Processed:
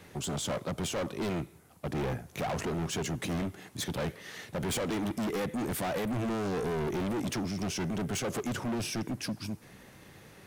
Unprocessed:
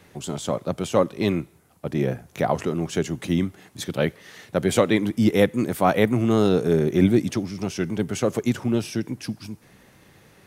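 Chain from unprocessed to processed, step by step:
brickwall limiter −13 dBFS, peak gain reduction 8 dB
hard clipping −30 dBFS, distortion −4 dB

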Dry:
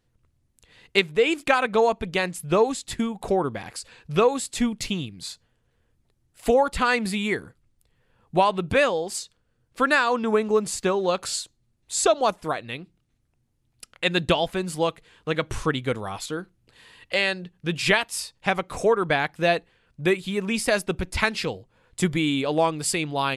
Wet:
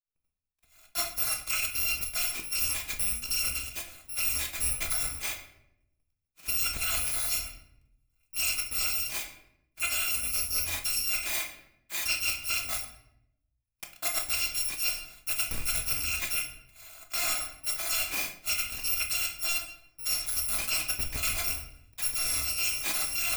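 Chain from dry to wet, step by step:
samples in bit-reversed order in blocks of 256 samples
parametric band 2,400 Hz +14.5 dB 0.22 octaves
downward expander −52 dBFS
speech leveller within 4 dB 0.5 s
in parallel at −11 dB: wrap-around overflow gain 15.5 dB
on the sum: rectangular room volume 190 cubic metres, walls mixed, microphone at 0.67 metres
reversed playback
downward compressor, threshold −21 dBFS, peak gain reduction 9 dB
reversed playback
level −5 dB

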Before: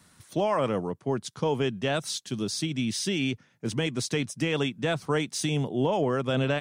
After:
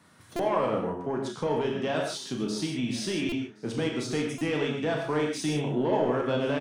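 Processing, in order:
high-pass filter 220 Hz 6 dB per octave
high-shelf EQ 3,000 Hz −12 dB
in parallel at −3 dB: downward compressor, threshold −36 dBFS, peak gain reduction 12.5 dB
on the sum: soft clipping −19 dBFS, distortion −19 dB
double-tracking delay 33 ms −7.5 dB
on a send: single-tap delay 1,071 ms −24 dB
on the sum: reverb whose tail is shaped and stops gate 170 ms flat, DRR 1 dB
buffer that repeats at 0:00.36/0:03.29/0:04.38, samples 128, times 10
level −1.5 dB

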